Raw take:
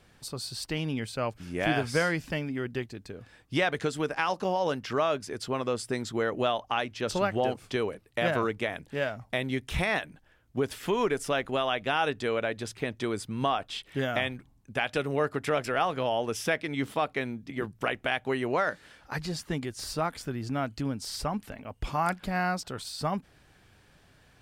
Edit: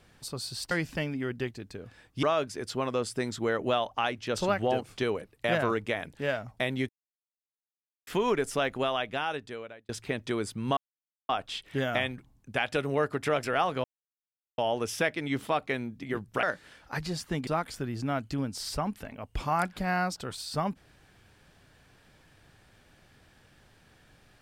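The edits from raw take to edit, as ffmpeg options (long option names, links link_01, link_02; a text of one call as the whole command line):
ffmpeg -i in.wav -filter_complex "[0:a]asplit=10[link_01][link_02][link_03][link_04][link_05][link_06][link_07][link_08][link_09][link_10];[link_01]atrim=end=0.712[link_11];[link_02]atrim=start=2.058:end=3.582[link_12];[link_03]atrim=start=4.958:end=9.62,asetpts=PTS-STARTPTS,afade=type=out:start_time=4.658:duration=0.004:curve=hsin[link_13];[link_04]atrim=start=9.62:end=10.8,asetpts=PTS-STARTPTS,volume=0[link_14];[link_05]atrim=start=10.8:end=12.62,asetpts=PTS-STARTPTS,afade=type=in:duration=0.004:curve=hsin,afade=type=out:start_time=0.71:duration=1.11[link_15];[link_06]atrim=start=12.62:end=13.5,asetpts=PTS-STARTPTS,afade=type=in:duration=0.004:curve=hsin,afade=type=out:start_time=0.876:duration=0.004:curve=hsin,apad=pad_dur=0.52[link_16];[link_07]atrim=start=13.5:end=16.05,asetpts=PTS-STARTPTS,afade=type=in:duration=0.004:curve=hsin,afade=type=out:start_time=2.546:duration=0.004:curve=hsin,apad=pad_dur=0.74[link_17];[link_08]atrim=start=16.05:end=17.902,asetpts=PTS-STARTPTS,afade=type=in:duration=0.004:curve=hsin[link_18];[link_09]atrim=start=18.618:end=19.662[link_19];[link_10]atrim=start=19.938[link_20];[link_11][link_12]acrossfade=duration=0.004:curve1=hsin:curve2=hsin[link_21];[link_13][link_14][link_15][link_16][link_17][link_18]concat=n=6:v=0:a=1[link_22];[link_21][link_22]acrossfade=duration=0.004:curve1=hsin:curve2=hsin[link_23];[link_23][link_19]acrossfade=duration=0.004:curve1=hsin:curve2=hsin[link_24];[link_24][link_20]acrossfade=duration=0.004:curve1=hsin:curve2=hsin" out.wav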